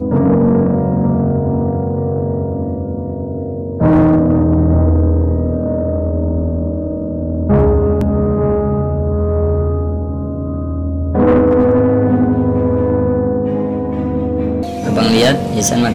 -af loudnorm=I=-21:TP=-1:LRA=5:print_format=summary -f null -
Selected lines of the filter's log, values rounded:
Input Integrated:    -15.1 LUFS
Input True Peak:      -5.5 dBTP
Input LRA:             1.8 LU
Input Threshold:     -25.1 LUFS